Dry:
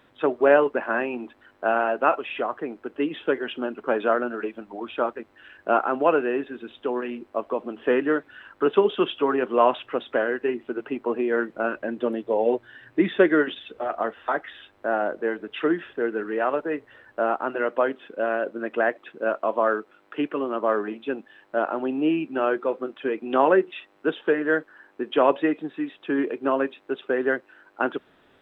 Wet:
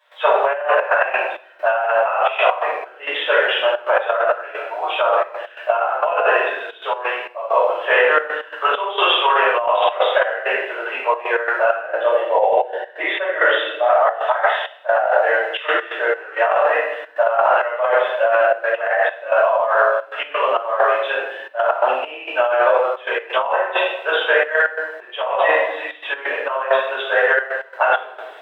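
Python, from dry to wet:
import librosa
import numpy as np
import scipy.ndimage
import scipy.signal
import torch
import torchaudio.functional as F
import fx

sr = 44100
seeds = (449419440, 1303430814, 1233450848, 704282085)

y = fx.high_shelf(x, sr, hz=2700.0, db=-8.0, at=(11.75, 14.19))
y = fx.room_shoebox(y, sr, seeds[0], volume_m3=340.0, walls='mixed', distance_m=5.6)
y = fx.step_gate(y, sr, bpm=132, pattern='.xxxxxx.x.xx.', floor_db=-12.0, edge_ms=4.5)
y = scipy.signal.sosfilt(scipy.signal.butter(6, 600.0, 'highpass', fs=sr, output='sos'), y)
y = fx.peak_eq(y, sr, hz=1300.0, db=-3.5, octaves=0.57)
y = fx.over_compress(y, sr, threshold_db=-17.0, ratio=-1.0)
y = y * 10.0 ** (2.0 / 20.0)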